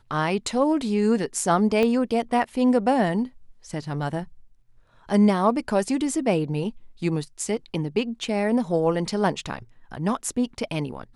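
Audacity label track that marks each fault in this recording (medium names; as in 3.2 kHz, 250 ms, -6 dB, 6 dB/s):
1.830000	1.830000	pop -12 dBFS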